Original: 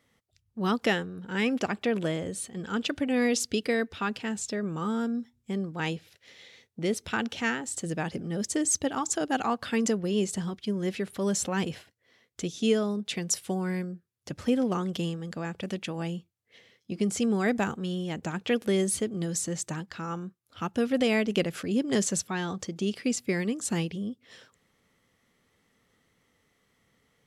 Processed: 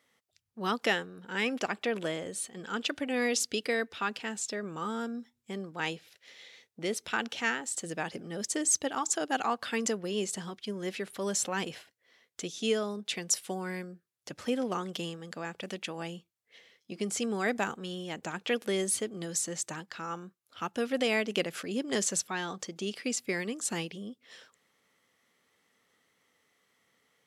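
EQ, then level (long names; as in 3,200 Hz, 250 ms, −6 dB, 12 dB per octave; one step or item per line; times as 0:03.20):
high-pass filter 510 Hz 6 dB per octave
0.0 dB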